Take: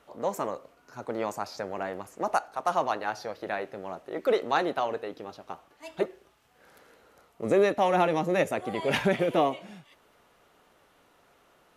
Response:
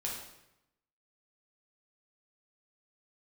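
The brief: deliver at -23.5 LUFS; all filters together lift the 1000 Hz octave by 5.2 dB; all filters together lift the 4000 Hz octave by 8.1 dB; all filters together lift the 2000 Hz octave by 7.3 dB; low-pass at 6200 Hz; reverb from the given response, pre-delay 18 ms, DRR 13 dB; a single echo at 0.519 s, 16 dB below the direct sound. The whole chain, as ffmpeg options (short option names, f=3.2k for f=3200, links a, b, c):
-filter_complex "[0:a]lowpass=6.2k,equalizer=f=1k:t=o:g=5.5,equalizer=f=2k:t=o:g=5.5,equalizer=f=4k:t=o:g=8.5,aecho=1:1:519:0.158,asplit=2[a][b];[1:a]atrim=start_sample=2205,adelay=18[c];[b][c]afir=irnorm=-1:irlink=0,volume=-15dB[d];[a][d]amix=inputs=2:normalize=0,volume=1.5dB"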